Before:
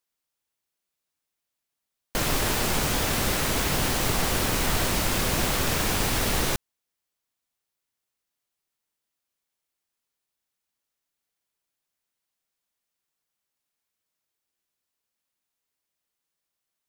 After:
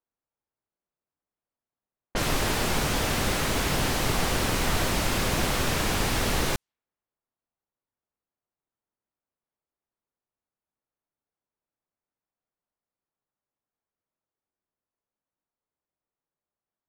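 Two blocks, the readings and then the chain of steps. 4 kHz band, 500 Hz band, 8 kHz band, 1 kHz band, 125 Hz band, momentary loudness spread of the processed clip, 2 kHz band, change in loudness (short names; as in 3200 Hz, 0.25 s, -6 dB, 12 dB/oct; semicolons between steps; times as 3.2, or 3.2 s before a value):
-1.0 dB, 0.0 dB, -3.0 dB, 0.0 dB, 0.0 dB, 2 LU, -0.5 dB, -1.5 dB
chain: low-pass opened by the level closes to 1100 Hz, open at -22 dBFS; slew limiter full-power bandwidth 200 Hz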